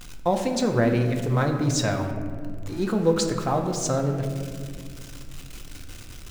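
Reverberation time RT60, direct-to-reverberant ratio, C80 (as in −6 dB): 2.0 s, 3.5 dB, 8.0 dB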